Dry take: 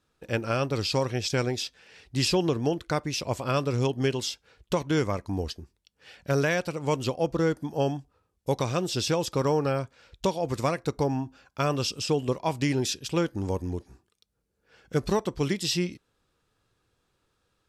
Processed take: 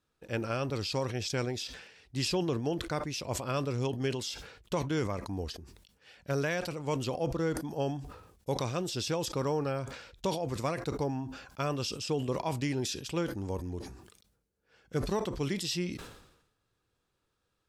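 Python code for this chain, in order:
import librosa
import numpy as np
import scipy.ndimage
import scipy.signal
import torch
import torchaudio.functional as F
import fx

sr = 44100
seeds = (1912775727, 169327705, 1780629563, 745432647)

y = fx.sustainer(x, sr, db_per_s=66.0)
y = y * 10.0 ** (-6.5 / 20.0)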